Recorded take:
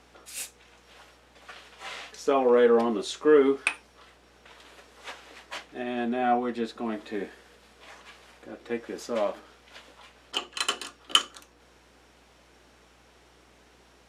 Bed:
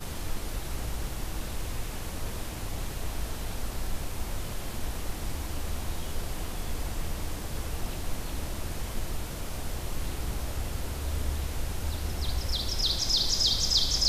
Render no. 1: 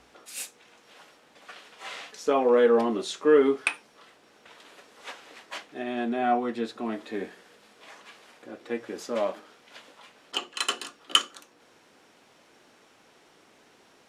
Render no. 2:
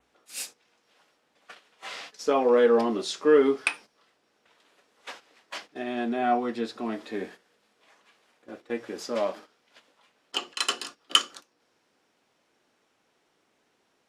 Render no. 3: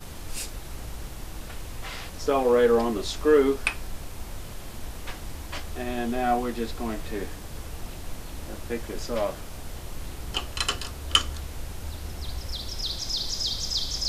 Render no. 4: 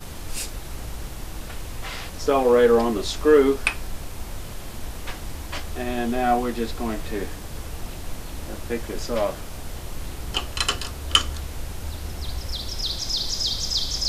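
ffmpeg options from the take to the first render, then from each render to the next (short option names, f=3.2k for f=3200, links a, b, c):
-af "bandreject=f=60:t=h:w=4,bandreject=f=120:t=h:w=4,bandreject=f=180:t=h:w=4"
-af "agate=range=-12dB:threshold=-44dB:ratio=16:detection=peak,adynamicequalizer=threshold=0.00178:dfrequency=5000:dqfactor=3.5:tfrequency=5000:tqfactor=3.5:attack=5:release=100:ratio=0.375:range=3.5:mode=boostabove:tftype=bell"
-filter_complex "[1:a]volume=-3.5dB[a];[0:a][a]amix=inputs=2:normalize=0"
-af "volume=3.5dB,alimiter=limit=-1dB:level=0:latency=1"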